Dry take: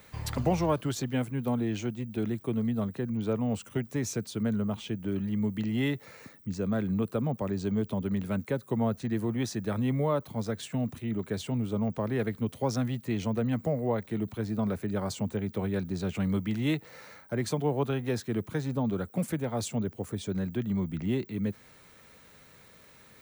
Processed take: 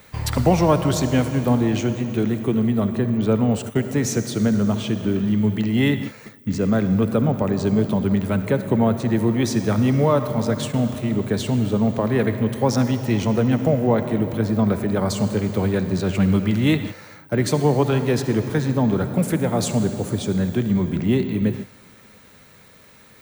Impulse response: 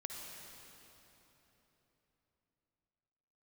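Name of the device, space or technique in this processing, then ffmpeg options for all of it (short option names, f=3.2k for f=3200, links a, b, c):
keyed gated reverb: -filter_complex "[0:a]asplit=3[a][b][c];[1:a]atrim=start_sample=2205[d];[b][d]afir=irnorm=-1:irlink=0[e];[c]apad=whole_len=1023741[f];[e][f]sidechaingate=range=-21dB:threshold=-44dB:ratio=16:detection=peak,volume=0.5dB[g];[a][g]amix=inputs=2:normalize=0,volume=5.5dB"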